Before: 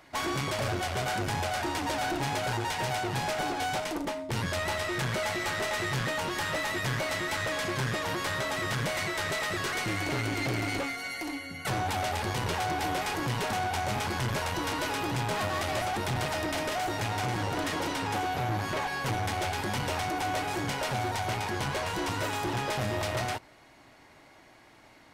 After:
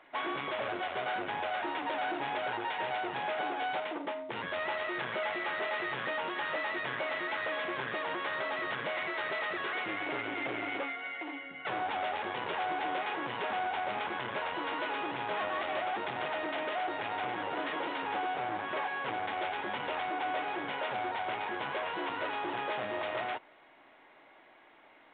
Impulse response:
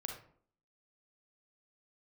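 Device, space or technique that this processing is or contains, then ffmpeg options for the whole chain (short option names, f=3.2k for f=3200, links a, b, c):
telephone: -af "highpass=360,lowpass=3.5k,volume=-2dB" -ar 8000 -c:a pcm_alaw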